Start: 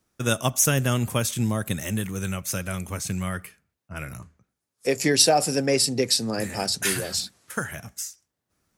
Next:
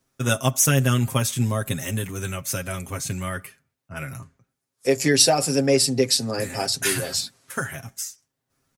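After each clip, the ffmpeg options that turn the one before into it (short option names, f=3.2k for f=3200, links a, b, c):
-af "aecho=1:1:7.5:0.65"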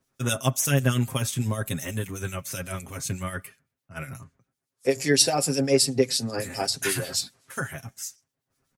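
-filter_complex "[0:a]acrossover=split=2500[a][b];[a]aeval=exprs='val(0)*(1-0.7/2+0.7/2*cos(2*PI*8*n/s))':c=same[c];[b]aeval=exprs='val(0)*(1-0.7/2-0.7/2*cos(2*PI*8*n/s))':c=same[d];[c][d]amix=inputs=2:normalize=0"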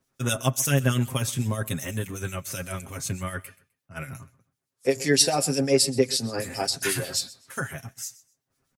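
-af "aecho=1:1:128|256:0.1|0.023"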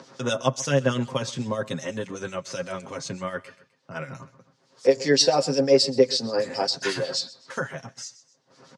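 -af "acompressor=mode=upward:threshold=-29dB:ratio=2.5,highpass=f=140:w=0.5412,highpass=f=140:w=1.3066,equalizer=f=520:t=q:w=4:g=9,equalizer=f=970:t=q:w=4:g=6,equalizer=f=2.4k:t=q:w=4:g=-4,equalizer=f=4.6k:t=q:w=4:g=4,lowpass=f=6.1k:w=0.5412,lowpass=f=6.1k:w=1.3066"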